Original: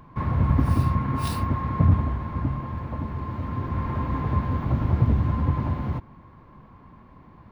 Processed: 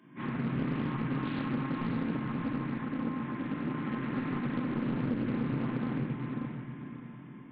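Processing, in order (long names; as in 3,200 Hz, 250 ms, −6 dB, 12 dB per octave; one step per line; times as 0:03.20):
high-pass filter 190 Hz 24 dB per octave
soft clipping −25.5 dBFS, distortion −13 dB
convolution reverb RT60 1.0 s, pre-delay 3 ms, DRR −6.5 dB
dynamic equaliser 1,300 Hz, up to +5 dB, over −40 dBFS, Q 1.3
linear-phase brick-wall low-pass 3,600 Hz
feedback delay with all-pass diffusion 533 ms, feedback 42%, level −6 dB
downward compressor, threshold −19 dBFS, peak gain reduction 5 dB
flat-topped bell 790 Hz −11.5 dB
highs frequency-modulated by the lows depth 0.5 ms
level −7 dB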